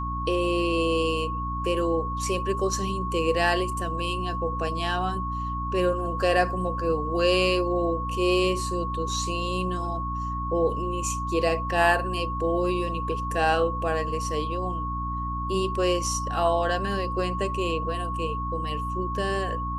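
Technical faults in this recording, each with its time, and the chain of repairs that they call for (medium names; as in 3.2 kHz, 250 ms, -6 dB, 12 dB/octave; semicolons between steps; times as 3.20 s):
hum 60 Hz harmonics 5 -32 dBFS
whine 1.1 kHz -30 dBFS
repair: de-hum 60 Hz, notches 5; band-stop 1.1 kHz, Q 30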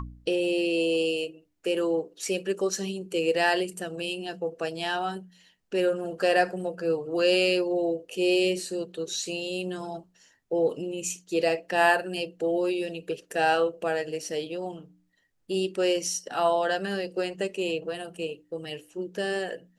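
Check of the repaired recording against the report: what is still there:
nothing left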